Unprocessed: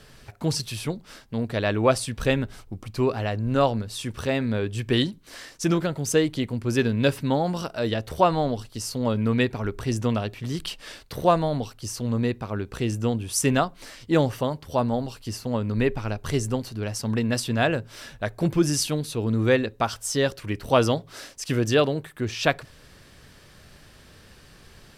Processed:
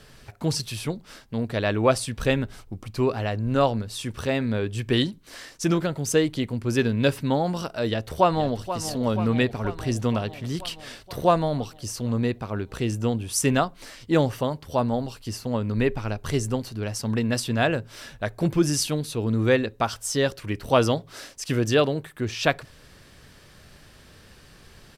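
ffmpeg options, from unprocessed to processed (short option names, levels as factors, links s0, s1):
-filter_complex "[0:a]asplit=2[s0][s1];[s1]afade=t=in:st=7.88:d=0.01,afade=t=out:st=8.78:d=0.01,aecho=0:1:480|960|1440|1920|2400|2880|3360|3840|4320|4800:0.281838|0.197287|0.138101|0.0966705|0.0676694|0.0473686|0.033158|0.0232106|0.0162474|0.0113732[s2];[s0][s2]amix=inputs=2:normalize=0"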